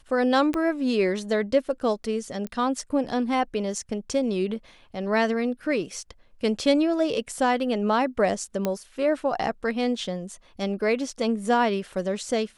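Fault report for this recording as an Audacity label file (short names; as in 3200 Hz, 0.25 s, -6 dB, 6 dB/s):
0.540000	0.540000	pop -15 dBFS
2.470000	2.470000	pop -20 dBFS
8.650000	8.650000	pop -12 dBFS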